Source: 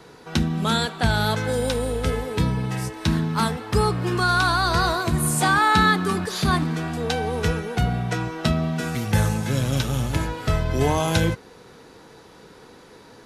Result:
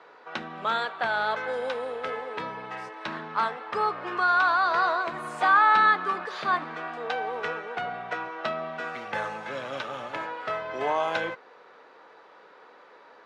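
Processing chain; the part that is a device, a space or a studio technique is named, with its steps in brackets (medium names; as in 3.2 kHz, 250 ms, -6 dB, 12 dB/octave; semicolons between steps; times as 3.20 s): tin-can telephone (band-pass 680–2100 Hz; small resonant body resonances 580/1200 Hz, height 6 dB)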